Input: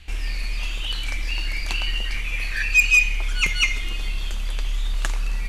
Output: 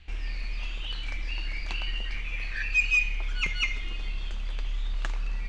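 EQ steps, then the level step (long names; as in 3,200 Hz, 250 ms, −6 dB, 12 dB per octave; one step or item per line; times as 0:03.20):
high-frequency loss of the air 120 metres
−6.0 dB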